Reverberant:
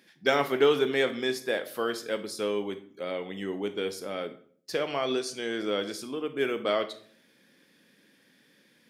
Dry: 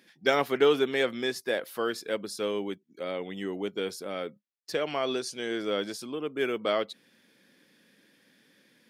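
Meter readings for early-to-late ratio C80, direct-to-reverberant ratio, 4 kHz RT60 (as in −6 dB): 17.5 dB, 9.5 dB, 0.40 s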